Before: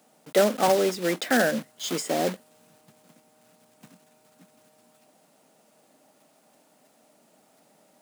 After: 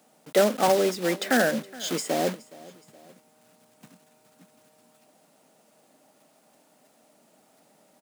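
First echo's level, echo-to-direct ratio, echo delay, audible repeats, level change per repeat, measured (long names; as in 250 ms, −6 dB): −21.0 dB, −20.0 dB, 419 ms, 2, −6.0 dB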